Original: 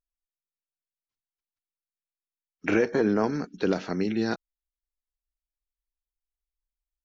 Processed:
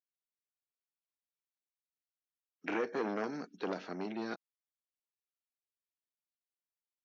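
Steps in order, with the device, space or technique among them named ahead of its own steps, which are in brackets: public-address speaker with an overloaded transformer (core saturation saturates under 970 Hz; BPF 230–5300 Hz); 2.96–3.56 high shelf 4100 Hz +7 dB; gain -8.5 dB

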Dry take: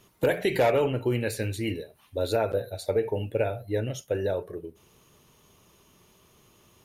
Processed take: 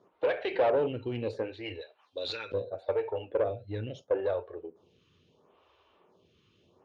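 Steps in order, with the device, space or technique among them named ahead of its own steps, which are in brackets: 1.81–2.52 weighting filter ITU-R 468; vibe pedal into a guitar amplifier (photocell phaser 0.74 Hz; tube stage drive 23 dB, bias 0.35; speaker cabinet 87–4000 Hz, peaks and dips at 88 Hz +4 dB, 130 Hz -8 dB, 210 Hz -5 dB, 510 Hz +5 dB, 780 Hz +3 dB, 2000 Hz -5 dB)

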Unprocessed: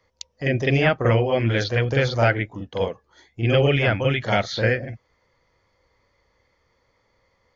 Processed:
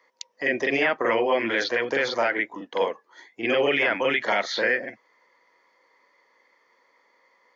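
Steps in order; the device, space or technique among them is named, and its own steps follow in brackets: laptop speaker (HPF 260 Hz 24 dB/oct; bell 1000 Hz +8 dB 0.34 oct; bell 1900 Hz +8 dB 0.5 oct; limiter -12.5 dBFS, peak gain reduction 8.5 dB)

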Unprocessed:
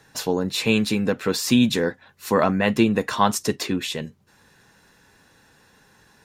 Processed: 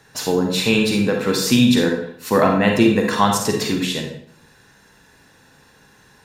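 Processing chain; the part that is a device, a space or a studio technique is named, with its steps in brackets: bathroom (reverb RT60 0.65 s, pre-delay 37 ms, DRR 2 dB); gain +2 dB

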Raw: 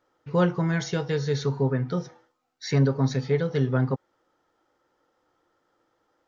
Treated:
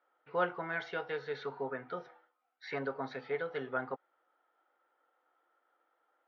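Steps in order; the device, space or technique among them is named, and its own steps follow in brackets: phone earpiece (speaker cabinet 470–3400 Hz, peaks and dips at 720 Hz +6 dB, 1400 Hz +7 dB, 2200 Hz +3 dB); gain -7.5 dB

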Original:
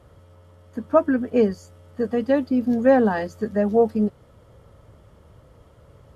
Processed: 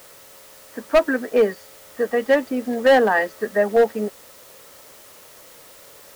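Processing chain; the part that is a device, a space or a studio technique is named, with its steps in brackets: drive-through speaker (BPF 450–3500 Hz; bell 1900 Hz +8 dB 0.3 oct; hard clip -15.5 dBFS, distortion -12 dB; white noise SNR 25 dB); gain +6 dB

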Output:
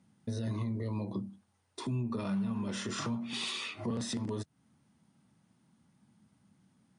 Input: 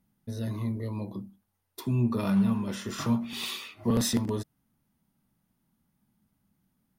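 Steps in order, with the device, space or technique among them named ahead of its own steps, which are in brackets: podcast mastering chain (HPF 82 Hz 24 dB/oct; de-esser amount 60%; compressor 3:1, threshold -40 dBFS, peak gain reduction 14.5 dB; limiter -33 dBFS, peak gain reduction 6 dB; gain +7 dB; MP3 96 kbps 22050 Hz)

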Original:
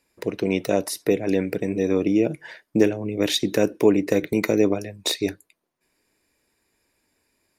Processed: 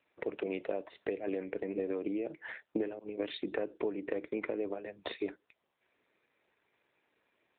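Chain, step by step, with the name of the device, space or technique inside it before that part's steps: 2.99–3.42 expander -21 dBFS; voicemail (BPF 370–2900 Hz; compressor 8:1, threshold -31 dBFS, peak gain reduction 17 dB; AMR-NB 7.95 kbps 8000 Hz)

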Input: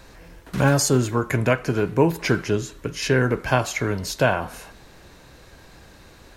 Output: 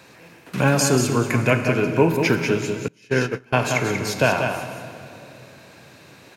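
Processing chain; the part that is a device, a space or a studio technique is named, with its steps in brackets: PA in a hall (HPF 110 Hz 24 dB/oct; bell 2500 Hz +7.5 dB 0.3 oct; echo 0.187 s -6.5 dB; reverb RT60 2.8 s, pre-delay 37 ms, DRR 8.5 dB); 2.88–3.58 gate -17 dBFS, range -27 dB

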